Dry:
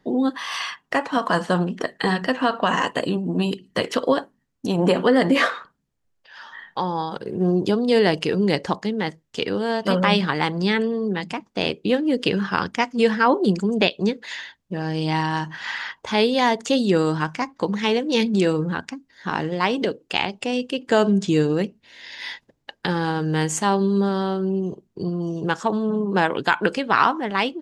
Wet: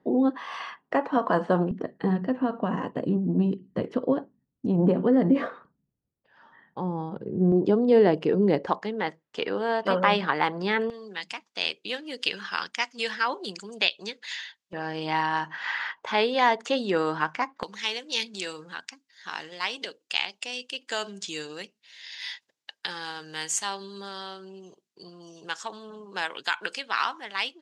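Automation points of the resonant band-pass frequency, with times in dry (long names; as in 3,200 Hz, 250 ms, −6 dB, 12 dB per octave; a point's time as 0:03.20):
resonant band-pass, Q 0.61
440 Hz
from 0:01.71 160 Hz
from 0:07.52 400 Hz
from 0:08.67 1,000 Hz
from 0:10.90 4,400 Hz
from 0:14.73 1,300 Hz
from 0:17.63 5,500 Hz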